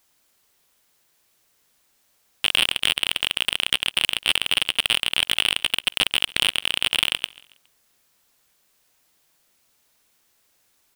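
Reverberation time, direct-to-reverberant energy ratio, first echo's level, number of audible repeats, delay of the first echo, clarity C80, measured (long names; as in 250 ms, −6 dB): no reverb audible, no reverb audible, −21.5 dB, 2, 138 ms, no reverb audible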